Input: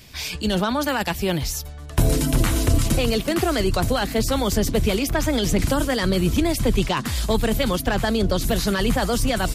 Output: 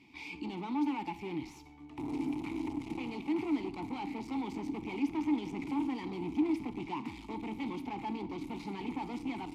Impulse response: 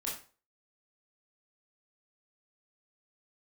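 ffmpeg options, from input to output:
-filter_complex "[0:a]aeval=exprs='(tanh(20*val(0)+0.45)-tanh(0.45))/20':c=same,asplit=3[s0][s1][s2];[s0]bandpass=f=300:t=q:w=8,volume=1[s3];[s1]bandpass=f=870:t=q:w=8,volume=0.501[s4];[s2]bandpass=f=2240:t=q:w=8,volume=0.355[s5];[s3][s4][s5]amix=inputs=3:normalize=0,asplit=2[s6][s7];[1:a]atrim=start_sample=2205,asetrate=30429,aresample=44100[s8];[s7][s8]afir=irnorm=-1:irlink=0,volume=0.178[s9];[s6][s9]amix=inputs=2:normalize=0,volume=1.5"

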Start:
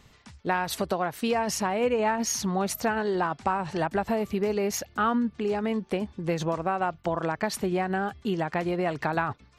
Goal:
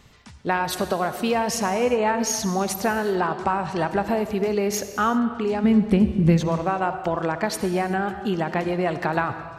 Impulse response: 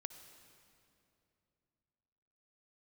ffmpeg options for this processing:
-filter_complex "[0:a]asplit=3[s0][s1][s2];[s0]afade=t=out:st=5.63:d=0.02[s3];[s1]asubboost=boost=6.5:cutoff=230,afade=t=in:st=5.63:d=0.02,afade=t=out:st=6.36:d=0.02[s4];[s2]afade=t=in:st=6.36:d=0.02[s5];[s3][s4][s5]amix=inputs=3:normalize=0[s6];[1:a]atrim=start_sample=2205,afade=t=out:st=0.44:d=0.01,atrim=end_sample=19845[s7];[s6][s7]afir=irnorm=-1:irlink=0,volume=2.37"

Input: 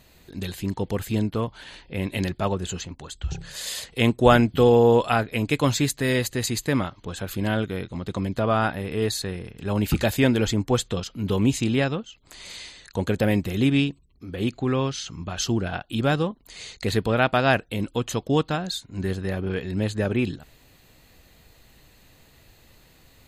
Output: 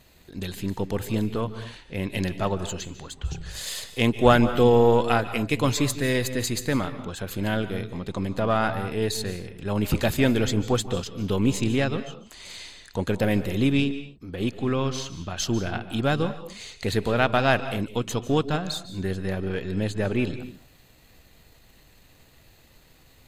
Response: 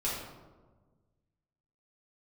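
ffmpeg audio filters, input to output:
-filter_complex "[0:a]aeval=exprs='if(lt(val(0),0),0.708*val(0),val(0))':c=same,asplit=2[s0][s1];[1:a]atrim=start_sample=2205,afade=t=out:st=0.18:d=0.01,atrim=end_sample=8379,adelay=143[s2];[s1][s2]afir=irnorm=-1:irlink=0,volume=0.133[s3];[s0][s3]amix=inputs=2:normalize=0"

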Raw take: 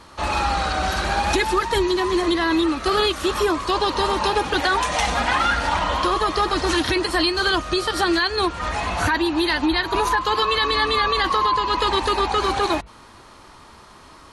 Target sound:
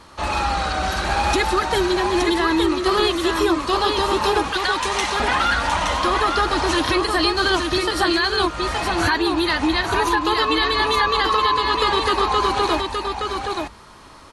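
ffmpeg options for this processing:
-filter_complex "[0:a]asettb=1/sr,asplit=3[s0][s1][s2];[s0]atrim=end=4.524[s3];[s1]atrim=start=4.52:end=5.2,asetpts=PTS-STARTPTS,afade=t=in:d=0.004:c=qsin,afade=t=out:st=0.676:d=0.004:c=qsin,highpass=1100[s4];[s2]atrim=start=5.196[s5];[s3][s4]acrossfade=d=0.004:c1=hsin:c2=qsin[s6];[s6][s5]acrossfade=d=0.004:c1=qsin:c2=hsin,aecho=1:1:870:0.596"

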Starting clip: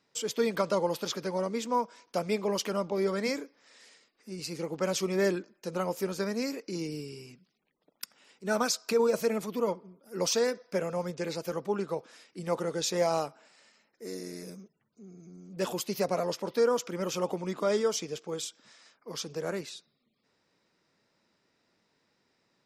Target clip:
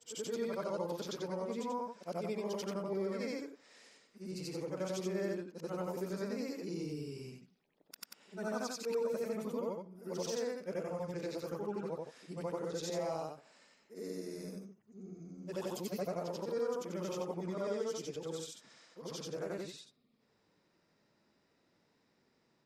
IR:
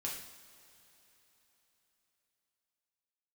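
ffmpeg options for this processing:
-af "afftfilt=real='re':imag='-im':win_size=8192:overlap=0.75,acompressor=threshold=0.00501:ratio=2,tiltshelf=f=970:g=3,volume=1.41"

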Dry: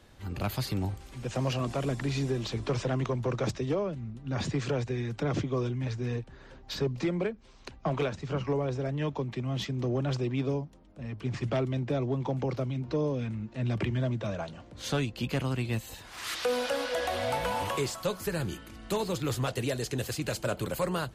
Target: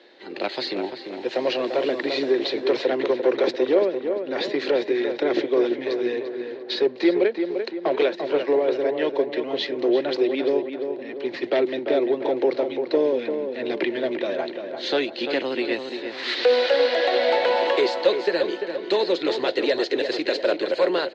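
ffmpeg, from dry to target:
-filter_complex "[0:a]aeval=exprs='0.112*(cos(1*acos(clip(val(0)/0.112,-1,1)))-cos(1*PI/2))+0.00501*(cos(5*acos(clip(val(0)/0.112,-1,1)))-cos(5*PI/2))+0.00501*(cos(7*acos(clip(val(0)/0.112,-1,1)))-cos(7*PI/2))':c=same,highpass=f=310:w=0.5412,highpass=f=310:w=1.3066,equalizer=f=360:t=q:w=4:g=8,equalizer=f=530:t=q:w=4:g=5,equalizer=f=1200:t=q:w=4:g=-8,equalizer=f=1900:t=q:w=4:g=6,equalizer=f=4100:t=q:w=4:g=9,lowpass=f=4400:w=0.5412,lowpass=f=4400:w=1.3066,asplit=2[s0][s1];[s1]adelay=344,lowpass=f=2300:p=1,volume=0.473,asplit=2[s2][s3];[s3]adelay=344,lowpass=f=2300:p=1,volume=0.5,asplit=2[s4][s5];[s5]adelay=344,lowpass=f=2300:p=1,volume=0.5,asplit=2[s6][s7];[s7]adelay=344,lowpass=f=2300:p=1,volume=0.5,asplit=2[s8][s9];[s9]adelay=344,lowpass=f=2300:p=1,volume=0.5,asplit=2[s10][s11];[s11]adelay=344,lowpass=f=2300:p=1,volume=0.5[s12];[s2][s4][s6][s8][s10][s12]amix=inputs=6:normalize=0[s13];[s0][s13]amix=inputs=2:normalize=0,volume=2.11"

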